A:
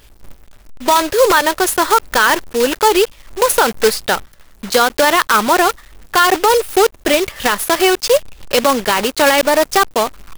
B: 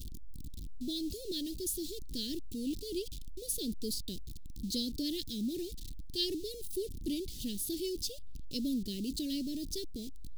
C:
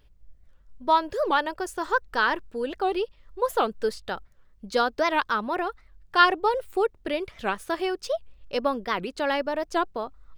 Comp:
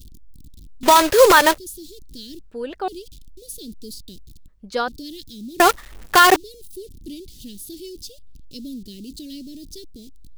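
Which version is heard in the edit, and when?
B
0:00.83–0:01.58: punch in from A
0:02.41–0:02.88: punch in from C
0:04.48–0:04.88: punch in from C
0:05.60–0:06.36: punch in from A

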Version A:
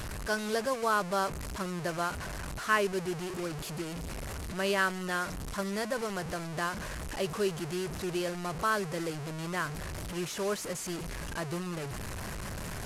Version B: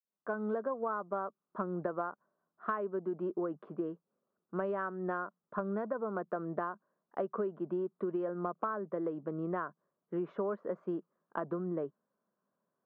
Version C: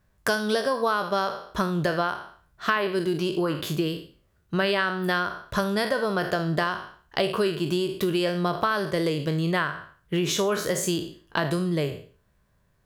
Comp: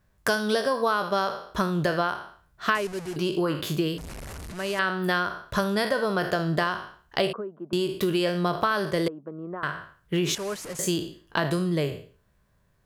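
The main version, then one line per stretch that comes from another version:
C
0:02.75–0:03.16: punch in from A
0:03.98–0:04.79: punch in from A
0:07.33–0:07.73: punch in from B
0:09.08–0:09.63: punch in from B
0:10.35–0:10.79: punch in from A

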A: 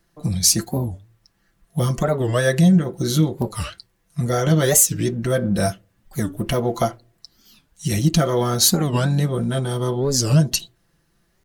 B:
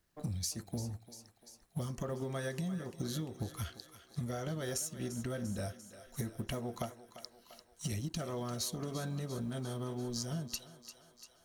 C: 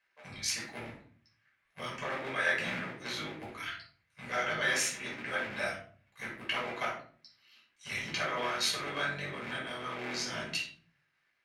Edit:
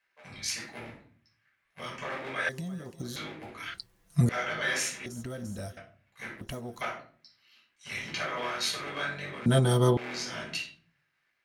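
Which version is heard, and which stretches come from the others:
C
0:02.49–0:03.16: punch in from B
0:03.74–0:04.29: punch in from A
0:05.06–0:05.77: punch in from B
0:06.41–0:06.81: punch in from B
0:09.46–0:09.97: punch in from A

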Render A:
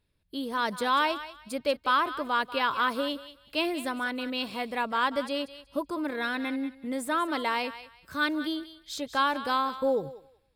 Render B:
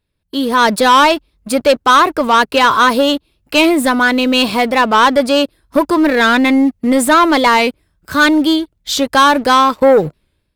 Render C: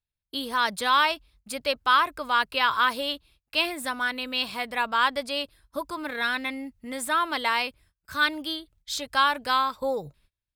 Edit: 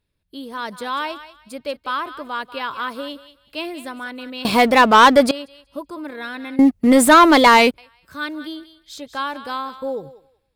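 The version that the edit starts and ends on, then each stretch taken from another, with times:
A
0:04.45–0:05.31: punch in from B
0:06.59–0:07.78: punch in from B
not used: C

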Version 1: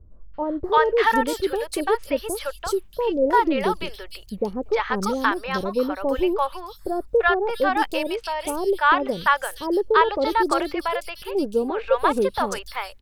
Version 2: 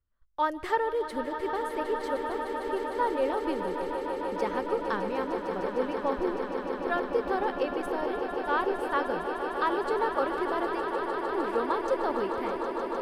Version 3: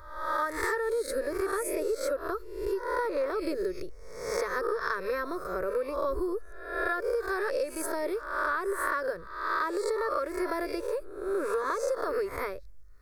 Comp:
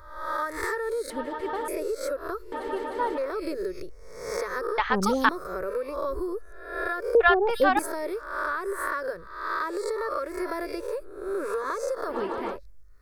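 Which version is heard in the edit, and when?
3
0:01.10–0:01.68: punch in from 2
0:02.52–0:03.18: punch in from 2
0:04.78–0:05.29: punch in from 1
0:07.15–0:07.79: punch in from 1
0:12.12–0:12.54: punch in from 2, crossfade 0.10 s

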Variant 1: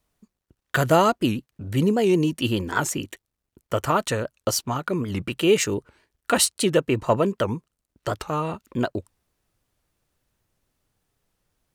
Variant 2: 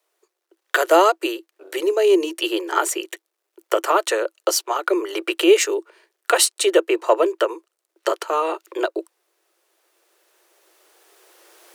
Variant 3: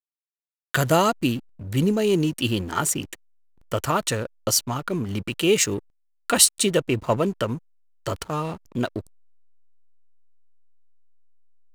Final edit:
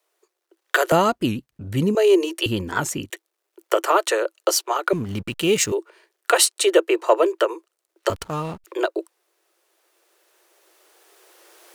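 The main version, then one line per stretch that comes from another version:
2
0:00.92–0:01.95: punch in from 1
0:02.46–0:03.10: punch in from 1
0:04.93–0:05.72: punch in from 3
0:08.10–0:08.64: punch in from 3

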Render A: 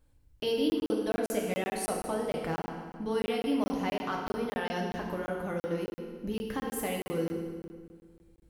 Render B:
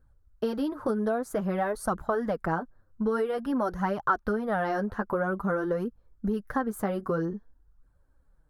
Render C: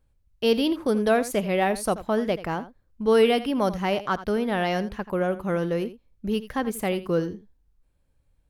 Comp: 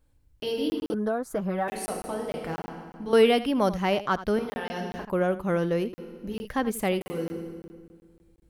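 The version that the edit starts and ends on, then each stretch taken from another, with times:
A
0:00.94–0:01.68: punch in from B
0:03.13–0:04.39: punch in from C
0:05.05–0:05.93: punch in from C
0:06.45–0:07.01: punch in from C

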